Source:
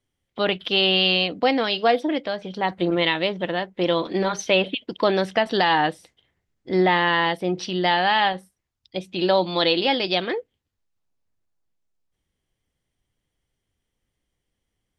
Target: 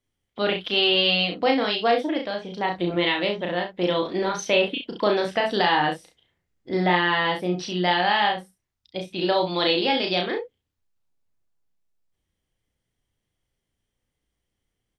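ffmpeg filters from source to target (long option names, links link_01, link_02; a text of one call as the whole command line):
ffmpeg -i in.wav -af "aecho=1:1:34|66:0.668|0.335,volume=-3dB" out.wav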